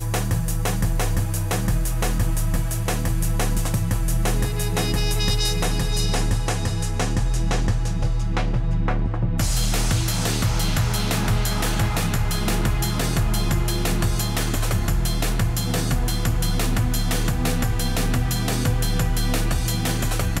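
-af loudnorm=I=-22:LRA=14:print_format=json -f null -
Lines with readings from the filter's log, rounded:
"input_i" : "-23.2",
"input_tp" : "-11.4",
"input_lra" : "1.3",
"input_thresh" : "-33.2",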